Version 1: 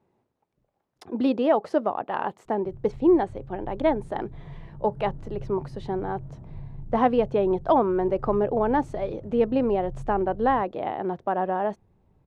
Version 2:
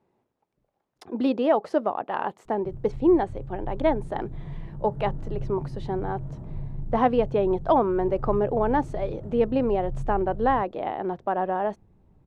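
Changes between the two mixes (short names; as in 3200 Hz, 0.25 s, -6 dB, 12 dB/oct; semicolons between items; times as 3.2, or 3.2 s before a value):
background +7.0 dB; master: add bell 94 Hz -3.5 dB 1.8 oct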